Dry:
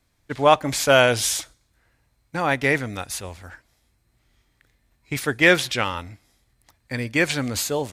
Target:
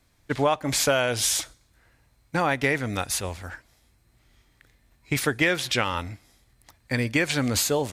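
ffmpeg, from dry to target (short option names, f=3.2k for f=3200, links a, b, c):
-af "acompressor=threshold=-23dB:ratio=6,volume=3.5dB"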